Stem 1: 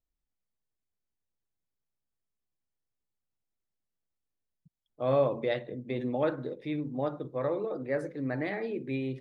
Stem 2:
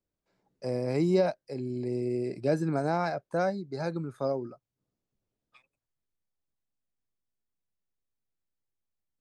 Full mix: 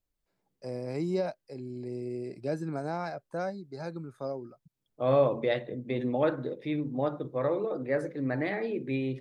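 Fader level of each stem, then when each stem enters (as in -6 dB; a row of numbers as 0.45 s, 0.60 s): +2.0 dB, -5.5 dB; 0.00 s, 0.00 s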